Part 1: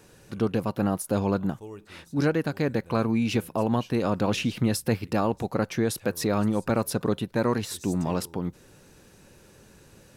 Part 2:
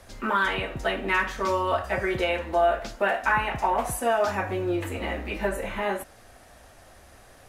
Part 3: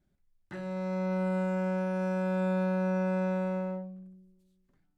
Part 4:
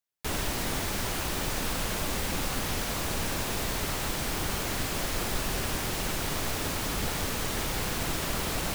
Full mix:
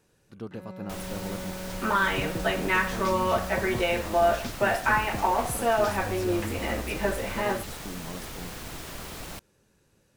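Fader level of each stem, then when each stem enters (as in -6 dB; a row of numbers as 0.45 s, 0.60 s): -13.0 dB, -0.5 dB, -8.0 dB, -8.5 dB; 0.00 s, 1.60 s, 0.00 s, 0.65 s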